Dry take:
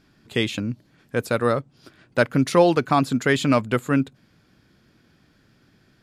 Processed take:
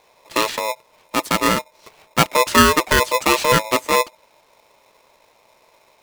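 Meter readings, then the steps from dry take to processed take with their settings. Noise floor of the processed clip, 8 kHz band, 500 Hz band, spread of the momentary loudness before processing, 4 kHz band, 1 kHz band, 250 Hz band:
−58 dBFS, +14.0 dB, +1.0 dB, 12 LU, +10.0 dB, +8.0 dB, −2.0 dB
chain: ring modulator with a square carrier 760 Hz
level +3 dB

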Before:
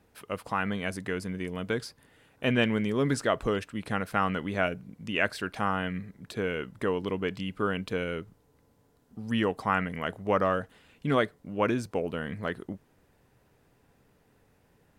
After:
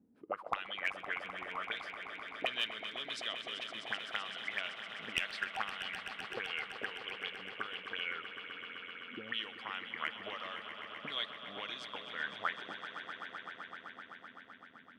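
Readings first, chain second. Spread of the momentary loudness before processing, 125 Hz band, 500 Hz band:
12 LU, −27.5 dB, −17.5 dB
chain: envelope filter 230–3,600 Hz, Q 6.5, up, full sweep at −25.5 dBFS
asymmetric clip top −30.5 dBFS, bottom −24 dBFS
echo that builds up and dies away 128 ms, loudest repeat 5, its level −12.5 dB
level +7 dB

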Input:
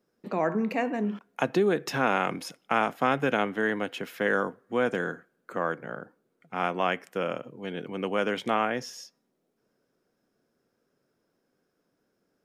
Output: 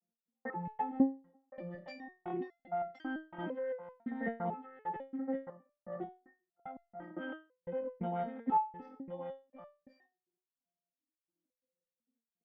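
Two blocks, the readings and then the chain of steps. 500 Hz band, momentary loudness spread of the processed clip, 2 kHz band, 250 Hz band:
−13.0 dB, 18 LU, −18.5 dB, −7.5 dB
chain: vocoder with an arpeggio as carrier bare fifth, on F3, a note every 266 ms
low-pass filter 4,200 Hz
low-pass that shuts in the quiet parts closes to 500 Hz, open at −22 dBFS
high-pass filter 170 Hz 6 dB per octave
noise gate −53 dBFS, range −17 dB
parametric band 750 Hz +6.5 dB 2.5 octaves
downward compressor, threshold −26 dBFS, peak gain reduction 9.5 dB
brickwall limiter −29 dBFS, peak gain reduction 11.5 dB
hollow resonant body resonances 220/820/1,900/3,100 Hz, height 13 dB, ringing for 20 ms
gate pattern "x...xx.xx..x..xx" 133 BPM −60 dB
on a send: single-tap delay 1,069 ms −7.5 dB
on the sum: step-sequenced resonator 2 Hz 230–690 Hz
level +12 dB

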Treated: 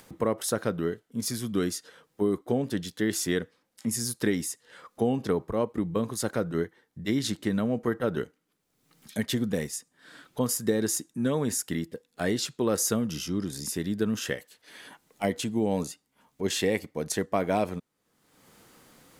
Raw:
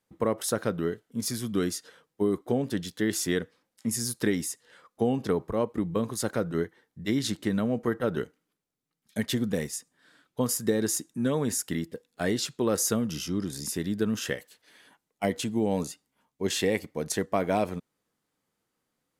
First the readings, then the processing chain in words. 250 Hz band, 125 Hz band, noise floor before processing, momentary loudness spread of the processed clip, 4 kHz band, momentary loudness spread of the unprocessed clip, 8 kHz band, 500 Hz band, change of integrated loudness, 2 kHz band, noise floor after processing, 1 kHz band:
0.0 dB, 0.0 dB, −83 dBFS, 10 LU, 0.0 dB, 9 LU, 0.0 dB, 0.0 dB, 0.0 dB, 0.0 dB, −75 dBFS, 0.0 dB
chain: upward compression, threshold −36 dBFS

